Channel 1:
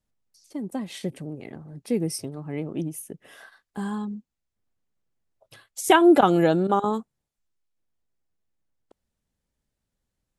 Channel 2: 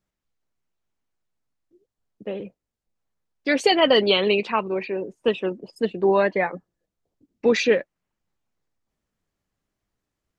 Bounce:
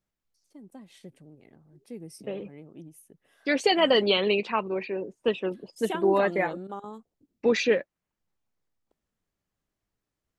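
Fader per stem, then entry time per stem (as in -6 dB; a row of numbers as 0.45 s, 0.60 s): -16.0 dB, -4.0 dB; 0.00 s, 0.00 s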